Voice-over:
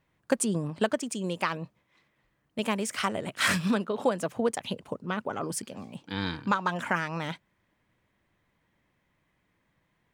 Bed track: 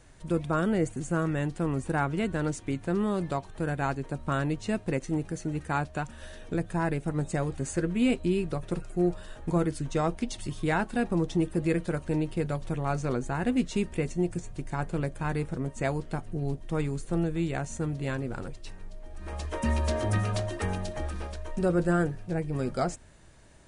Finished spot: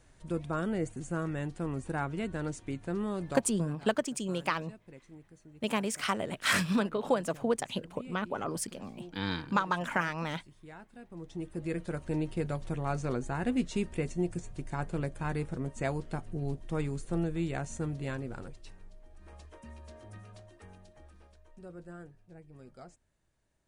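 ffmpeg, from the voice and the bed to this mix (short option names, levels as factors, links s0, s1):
-filter_complex "[0:a]adelay=3050,volume=0.794[s0];[1:a]volume=4.47,afade=t=out:st=3.35:d=0.42:silence=0.149624,afade=t=in:st=11.08:d=1.16:silence=0.112202,afade=t=out:st=17.83:d=1.83:silence=0.11885[s1];[s0][s1]amix=inputs=2:normalize=0"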